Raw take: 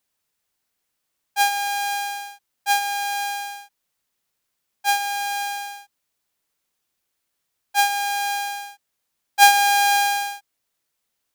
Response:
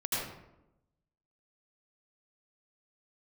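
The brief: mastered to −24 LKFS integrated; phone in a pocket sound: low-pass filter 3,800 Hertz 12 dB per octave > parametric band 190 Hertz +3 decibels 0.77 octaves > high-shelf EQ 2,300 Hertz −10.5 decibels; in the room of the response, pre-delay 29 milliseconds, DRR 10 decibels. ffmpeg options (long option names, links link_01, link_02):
-filter_complex "[0:a]asplit=2[link_01][link_02];[1:a]atrim=start_sample=2205,adelay=29[link_03];[link_02][link_03]afir=irnorm=-1:irlink=0,volume=-16.5dB[link_04];[link_01][link_04]amix=inputs=2:normalize=0,lowpass=3800,equalizer=frequency=190:width_type=o:width=0.77:gain=3,highshelf=frequency=2300:gain=-10.5,volume=-0.5dB"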